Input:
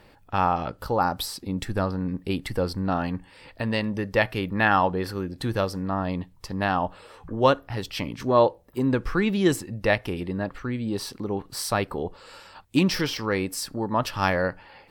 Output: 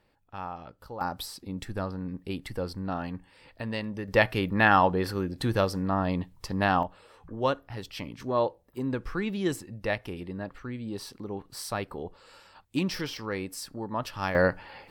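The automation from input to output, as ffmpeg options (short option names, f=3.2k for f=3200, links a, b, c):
-af "asetnsamples=n=441:p=0,asendcmd='1.01 volume volume -7dB;4.08 volume volume 0dB;6.83 volume volume -7.5dB;14.35 volume volume 2.5dB',volume=-15dB"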